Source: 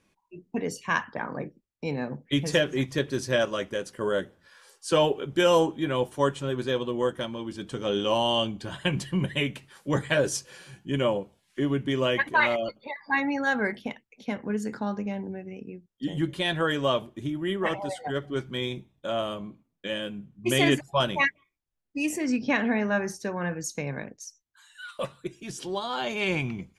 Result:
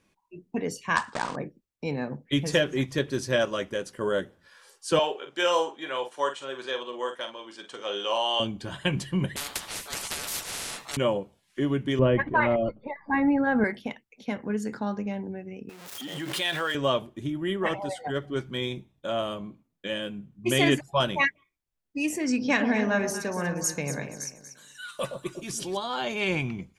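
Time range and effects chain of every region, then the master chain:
0.96–1.36 s: block-companded coder 3-bit + elliptic low-pass 8.7 kHz + peaking EQ 990 Hz +6.5 dB 0.91 oct
4.99–8.40 s: band-pass 620–7500 Hz + doubling 45 ms -8.5 dB
9.36–10.97 s: peaking EQ 190 Hz -10 dB 2.3 oct + ring modulator 1 kHz + spectrum-flattening compressor 10:1
11.99–13.64 s: low-pass 2.5 kHz + tilt EQ -3.5 dB/octave
15.69–16.75 s: jump at every zero crossing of -39 dBFS + high-pass 990 Hz 6 dB/octave + swell ahead of each attack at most 44 dB/s
22.26–25.77 s: treble shelf 5.3 kHz +10.5 dB + echo whose repeats swap between lows and highs 119 ms, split 940 Hz, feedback 55%, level -5.5 dB
whole clip: none

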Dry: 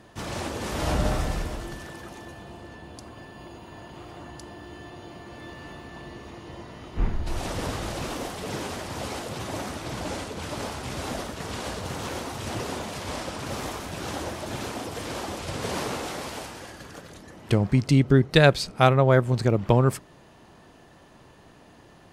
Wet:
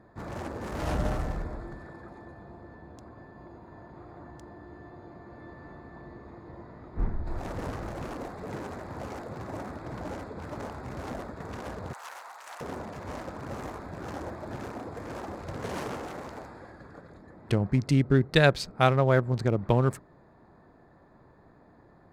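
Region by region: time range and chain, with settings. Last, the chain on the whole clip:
11.93–12.61 s: high-pass 800 Hz 24 dB/octave + treble shelf 9.5 kHz +9.5 dB
whole clip: local Wiener filter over 15 samples; peaking EQ 1.7 kHz +2 dB; trim -4 dB

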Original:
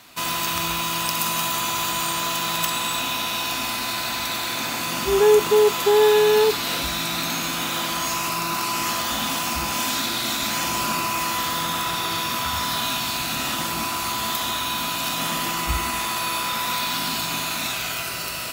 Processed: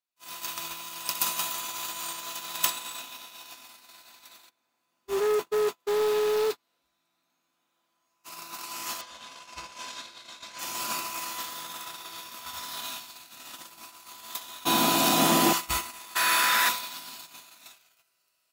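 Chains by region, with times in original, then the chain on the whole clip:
4.49–8.24 s: overload inside the chain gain 18 dB + treble shelf 2.1 kHz -9.5 dB
9.01–10.59 s: low-pass 5.6 kHz + comb 1.9 ms, depth 41%
14.65–15.53 s: peaking EQ 750 Hz +6.5 dB 0.3 oct + small resonant body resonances 200/310 Hz, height 15 dB, ringing for 20 ms
16.15–16.69 s: high-pass 110 Hz + peaking EQ 1.7 kHz +13.5 dB 0.64 oct + transient shaper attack -5 dB, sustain +12 dB
whole clip: gate -22 dBFS, range -45 dB; tone controls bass -11 dB, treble +5 dB; trim -2 dB

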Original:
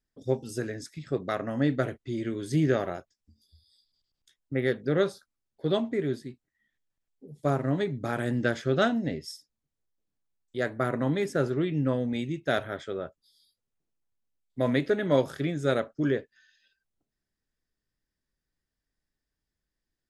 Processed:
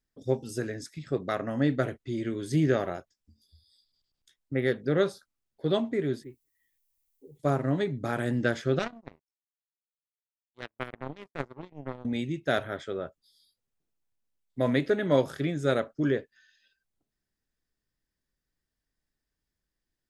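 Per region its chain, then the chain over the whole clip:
6.23–7.38 s: low-pass that closes with the level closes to 1.8 kHz, closed at -36.5 dBFS + static phaser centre 1 kHz, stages 8 + added noise violet -78 dBFS
8.79–12.05 s: treble shelf 3.4 kHz -8.5 dB + power-law waveshaper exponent 3
whole clip: none

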